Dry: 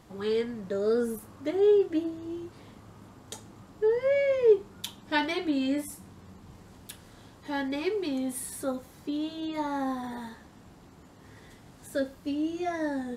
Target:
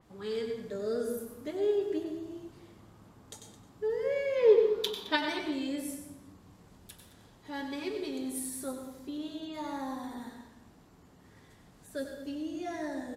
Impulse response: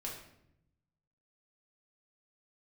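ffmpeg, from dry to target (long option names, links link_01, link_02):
-filter_complex "[0:a]asplit=3[link_01][link_02][link_03];[link_01]afade=type=out:start_time=4.35:duration=0.02[link_04];[link_02]equalizer=frequency=125:width_type=o:width=1:gain=-6,equalizer=frequency=250:width_type=o:width=1:gain=6,equalizer=frequency=500:width_type=o:width=1:gain=4,equalizer=frequency=1000:width_type=o:width=1:gain=9,equalizer=frequency=2000:width_type=o:width=1:gain=5,equalizer=frequency=4000:width_type=o:width=1:gain=10,equalizer=frequency=8000:width_type=o:width=1:gain=-7,afade=type=in:start_time=4.35:duration=0.02,afade=type=out:start_time=5.15:duration=0.02[link_05];[link_03]afade=type=in:start_time=5.15:duration=0.02[link_06];[link_04][link_05][link_06]amix=inputs=3:normalize=0,asplit=2[link_07][link_08];[link_08]adelay=215.7,volume=-14dB,highshelf=frequency=4000:gain=-4.85[link_09];[link_07][link_09]amix=inputs=2:normalize=0,asplit=2[link_10][link_11];[1:a]atrim=start_sample=2205,adelay=95[link_12];[link_11][link_12]afir=irnorm=-1:irlink=0,volume=-4.5dB[link_13];[link_10][link_13]amix=inputs=2:normalize=0,adynamicequalizer=threshold=0.00447:dfrequency=3700:dqfactor=0.7:tfrequency=3700:tqfactor=0.7:attack=5:release=100:ratio=0.375:range=3:mode=boostabove:tftype=highshelf,volume=-7.5dB"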